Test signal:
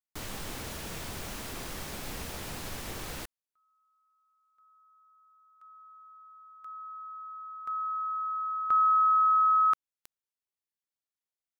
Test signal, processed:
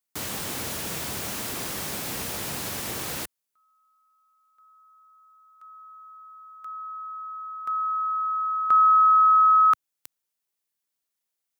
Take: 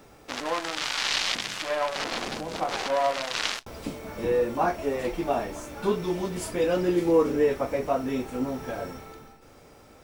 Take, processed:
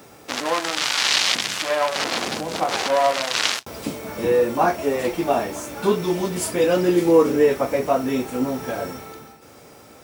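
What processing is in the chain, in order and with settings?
HPF 98 Hz 12 dB/oct; high shelf 6500 Hz +6.5 dB; gain +6 dB

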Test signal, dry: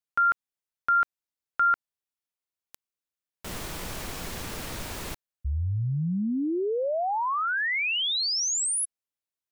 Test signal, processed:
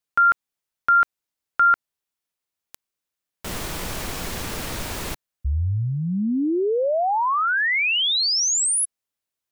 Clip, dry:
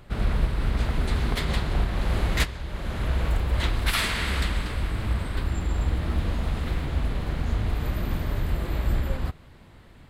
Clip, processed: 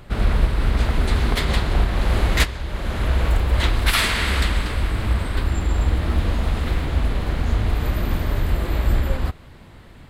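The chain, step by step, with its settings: dynamic EQ 150 Hz, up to -4 dB, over -42 dBFS, Q 1.8; gain +6 dB

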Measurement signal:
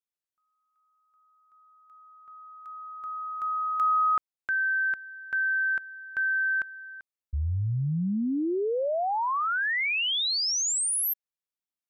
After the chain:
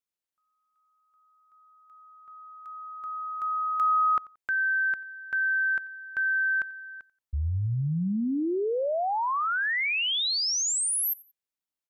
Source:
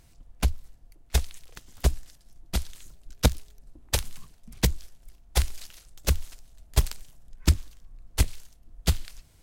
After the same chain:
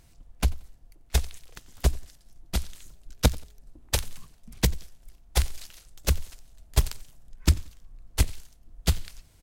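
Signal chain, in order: feedback echo 89 ms, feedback 29%, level -23 dB

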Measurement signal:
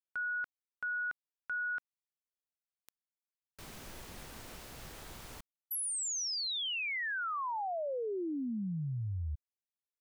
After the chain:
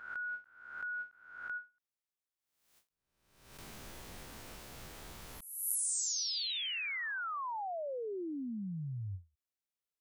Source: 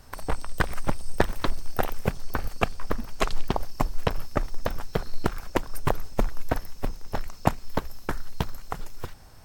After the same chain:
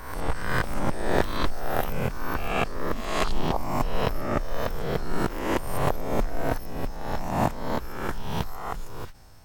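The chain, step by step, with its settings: spectral swells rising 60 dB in 0.84 s; ending taper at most 250 dB/s; gain -3.5 dB

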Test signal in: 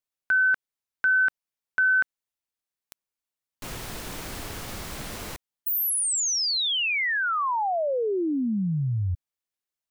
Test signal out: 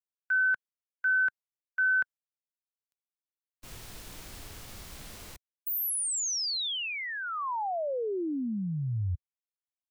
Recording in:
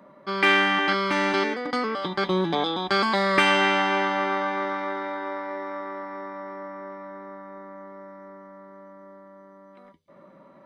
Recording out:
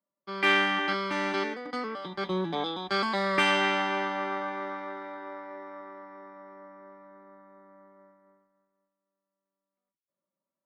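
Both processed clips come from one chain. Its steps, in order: harmonic-percussive split percussive -3 dB; gate -43 dBFS, range -18 dB; three-band expander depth 40%; gain -6 dB

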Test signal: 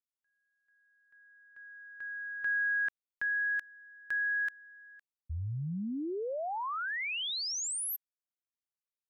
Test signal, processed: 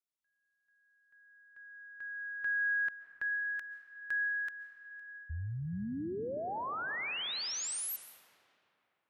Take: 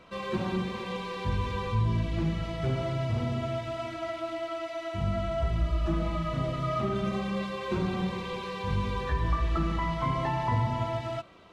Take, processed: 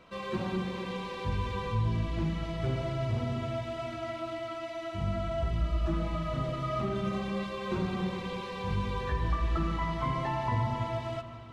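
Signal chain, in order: digital reverb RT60 3.3 s, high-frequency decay 0.6×, pre-delay 0.1 s, DRR 10 dB; gain -2.5 dB

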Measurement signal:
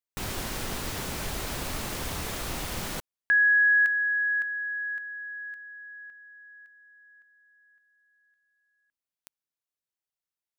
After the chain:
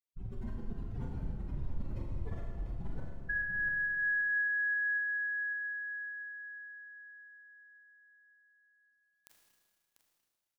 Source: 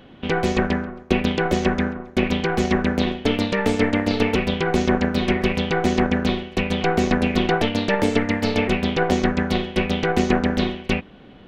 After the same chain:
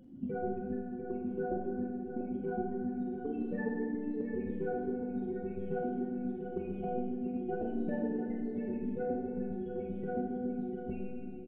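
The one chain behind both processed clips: spectral contrast raised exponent 3.5; compressor 6:1, threshold -30 dBFS; tremolo saw up 3.8 Hz, depth 45%; doubler 44 ms -8 dB; echo 0.694 s -9.5 dB; Schroeder reverb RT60 2 s, combs from 26 ms, DRR 0 dB; gain -3.5 dB

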